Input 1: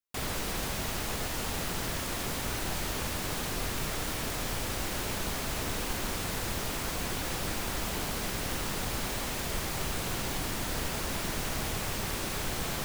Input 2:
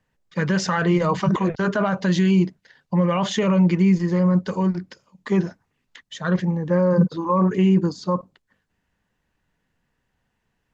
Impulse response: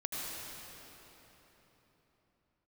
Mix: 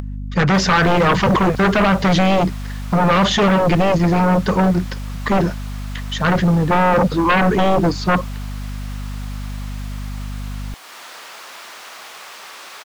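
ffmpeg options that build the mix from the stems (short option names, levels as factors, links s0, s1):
-filter_complex "[0:a]highpass=770,adelay=400,volume=0.631[s0];[1:a]aeval=exprs='val(0)+0.0141*(sin(2*PI*50*n/s)+sin(2*PI*2*50*n/s)/2+sin(2*PI*3*50*n/s)/3+sin(2*PI*4*50*n/s)/4+sin(2*PI*5*50*n/s)/5)':c=same,aeval=exprs='0.335*sin(PI/2*2.82*val(0)/0.335)':c=same,volume=0.841[s1];[s0][s1]amix=inputs=2:normalize=0,acompressor=mode=upward:threshold=0.0398:ratio=2.5,equalizer=f=1200:w=4.1:g=3.5,acrossover=split=6300[s2][s3];[s3]acompressor=threshold=0.00501:ratio=4:attack=1:release=60[s4];[s2][s4]amix=inputs=2:normalize=0"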